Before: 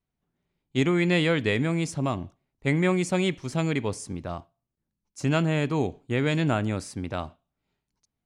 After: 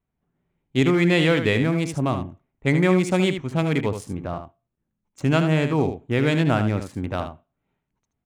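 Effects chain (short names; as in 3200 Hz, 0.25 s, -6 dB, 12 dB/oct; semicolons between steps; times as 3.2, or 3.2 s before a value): Wiener smoothing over 9 samples; echo 76 ms -8.5 dB; gain +4 dB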